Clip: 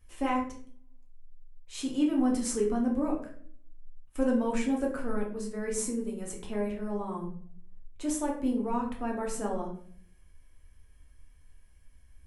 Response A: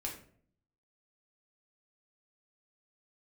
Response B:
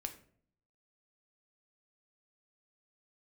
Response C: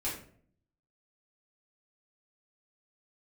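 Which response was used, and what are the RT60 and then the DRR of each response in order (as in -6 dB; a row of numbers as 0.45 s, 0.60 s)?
A; 0.55 s, 0.55 s, 0.55 s; -1.5 dB, 6.0 dB, -8.5 dB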